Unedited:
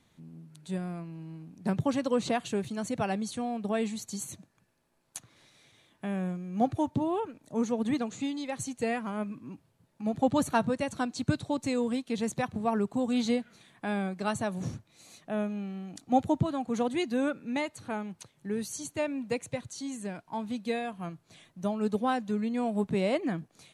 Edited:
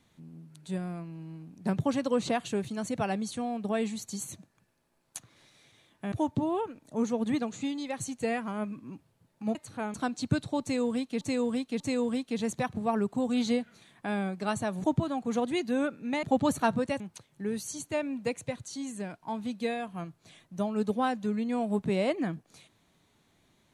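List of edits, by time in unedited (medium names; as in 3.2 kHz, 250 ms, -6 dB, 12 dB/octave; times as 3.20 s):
6.12–6.71 s: delete
10.14–10.91 s: swap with 17.66–18.05 s
11.59–12.18 s: loop, 3 plays
14.63–16.27 s: delete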